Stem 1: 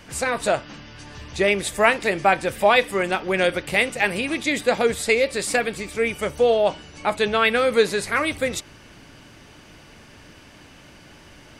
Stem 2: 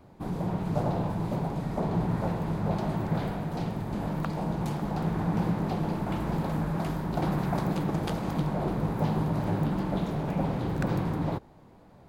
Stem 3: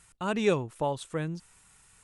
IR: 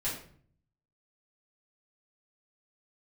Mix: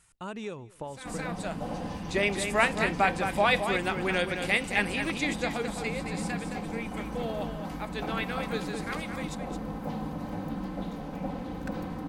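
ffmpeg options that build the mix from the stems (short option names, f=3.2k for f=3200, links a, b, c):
-filter_complex "[0:a]lowpass=11k,equalizer=f=510:t=o:w=0.77:g=-4.5,adelay=750,volume=-6dB,afade=t=out:st=5.09:d=0.74:silence=0.375837,asplit=2[a][b];[b]volume=-7.5dB[c];[1:a]aecho=1:1:3.9:0.8,adelay=850,volume=-7.5dB[d];[2:a]acompressor=threshold=-30dB:ratio=6,volume=-4.5dB,asplit=3[e][f][g];[f]volume=-23.5dB[h];[g]apad=whole_len=544543[i];[a][i]sidechaincompress=threshold=-55dB:ratio=10:attack=16:release=390[j];[c][h]amix=inputs=2:normalize=0,aecho=0:1:217:1[k];[j][d][e][k]amix=inputs=4:normalize=0"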